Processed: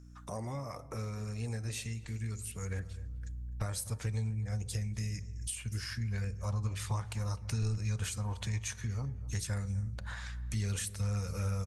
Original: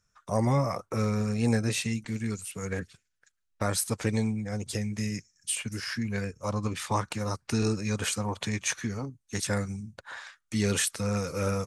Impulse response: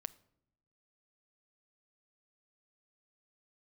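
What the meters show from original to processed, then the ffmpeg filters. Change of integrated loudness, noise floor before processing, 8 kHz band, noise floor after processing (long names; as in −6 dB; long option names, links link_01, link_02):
−7.0 dB, −78 dBFS, −8.0 dB, −48 dBFS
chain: -filter_complex "[0:a]aeval=exprs='val(0)+0.00251*(sin(2*PI*60*n/s)+sin(2*PI*2*60*n/s)/2+sin(2*PI*3*60*n/s)/3+sin(2*PI*4*60*n/s)/4+sin(2*PI*5*60*n/s)/5)':channel_layout=same,asplit=2[link_01][link_02];[1:a]atrim=start_sample=2205,highshelf=frequency=5500:gain=7.5[link_03];[link_02][link_03]afir=irnorm=-1:irlink=0,volume=9.5dB[link_04];[link_01][link_04]amix=inputs=2:normalize=0,acompressor=threshold=-35dB:ratio=2.5,asplit=2[link_05][link_06];[link_06]adelay=254,lowpass=frequency=1500:poles=1,volume=-17dB,asplit=2[link_07][link_08];[link_08]adelay=254,lowpass=frequency=1500:poles=1,volume=0.35,asplit=2[link_09][link_10];[link_10]adelay=254,lowpass=frequency=1500:poles=1,volume=0.35[link_11];[link_05][link_07][link_09][link_11]amix=inputs=4:normalize=0,asubboost=boost=11.5:cutoff=82,bandreject=frequency=83.57:width_type=h:width=4,bandreject=frequency=167.14:width_type=h:width=4,bandreject=frequency=250.71:width_type=h:width=4,bandreject=frequency=334.28:width_type=h:width=4,bandreject=frequency=417.85:width_type=h:width=4,bandreject=frequency=501.42:width_type=h:width=4,bandreject=frequency=584.99:width_type=h:width=4,bandreject=frequency=668.56:width_type=h:width=4,bandreject=frequency=752.13:width_type=h:width=4,bandreject=frequency=835.7:width_type=h:width=4,bandreject=frequency=919.27:width_type=h:width=4,volume=-8.5dB" -ar 48000 -c:a libopus -b:a 48k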